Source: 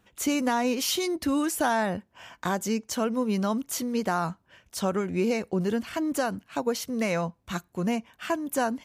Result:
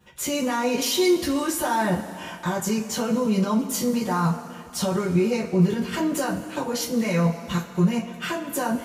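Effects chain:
output level in coarse steps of 10 dB
brickwall limiter −27 dBFS, peak gain reduction 9.5 dB
coupled-rooms reverb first 0.21 s, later 2.8 s, from −21 dB, DRR −8 dB
level +3 dB

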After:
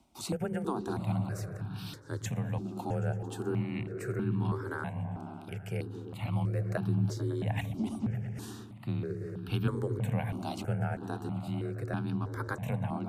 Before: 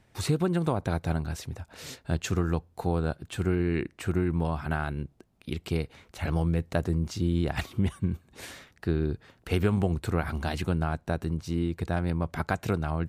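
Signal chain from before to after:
frequency shifter +25 Hz
echo whose low-pass opens from repeat to repeat 111 ms, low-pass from 200 Hz, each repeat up 1 octave, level −3 dB
reversed playback
upward compression, threshold −29 dBFS
reversed playback
step-sequenced phaser 3.1 Hz 470–2,000 Hz
level −3.5 dB

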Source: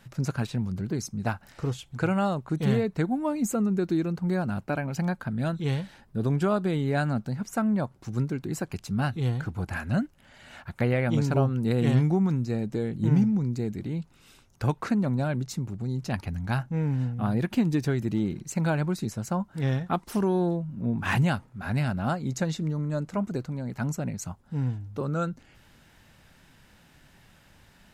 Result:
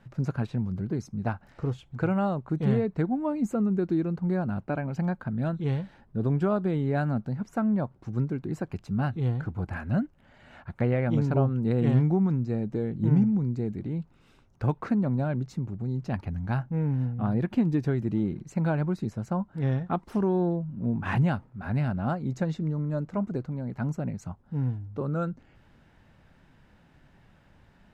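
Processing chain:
low-pass filter 1,200 Hz 6 dB per octave

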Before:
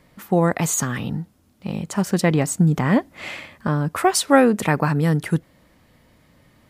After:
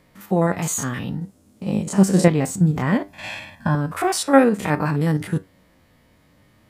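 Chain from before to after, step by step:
spectrum averaged block by block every 50 ms
0:03.08–0:03.75: comb filter 1.2 ms, depth 94%
flanger 0.6 Hz, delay 9.4 ms, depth 2.1 ms, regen +73%
0:01.21–0:02.28: graphic EQ with 10 bands 125 Hz +3 dB, 250 Hz +6 dB, 500 Hz +7 dB, 8,000 Hz +9 dB
level +4.5 dB

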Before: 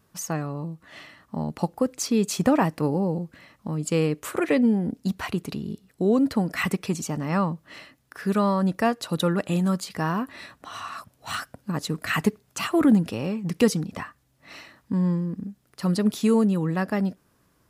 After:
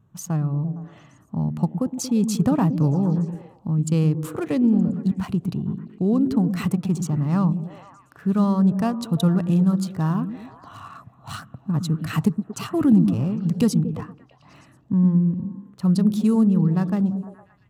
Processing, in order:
adaptive Wiener filter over 9 samples
octave-band graphic EQ 125/500/2,000 Hz +12/−6/−10 dB
echo through a band-pass that steps 115 ms, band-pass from 210 Hz, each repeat 0.7 octaves, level −6 dB

